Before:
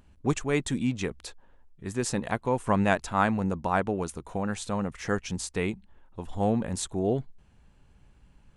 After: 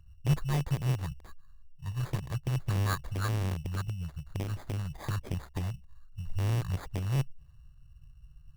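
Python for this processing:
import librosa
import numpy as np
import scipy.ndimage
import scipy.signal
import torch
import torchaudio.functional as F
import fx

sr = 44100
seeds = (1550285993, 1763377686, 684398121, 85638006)

y = fx.rattle_buzz(x, sr, strikes_db=-33.0, level_db=-17.0)
y = scipy.signal.sosfilt(scipy.signal.cheby1(4, 1.0, [150.0, 1600.0], 'bandstop', fs=sr, output='sos'), y)
y = fx.bass_treble(y, sr, bass_db=6, treble_db=-13)
y = fx.env_phaser(y, sr, low_hz=330.0, high_hz=4100.0, full_db=-25.0)
y = fx.sample_hold(y, sr, seeds[0], rate_hz=2800.0, jitter_pct=0)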